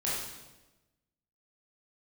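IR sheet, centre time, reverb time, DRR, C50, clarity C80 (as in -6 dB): 72 ms, 1.1 s, -8.0 dB, -0.5 dB, 3.0 dB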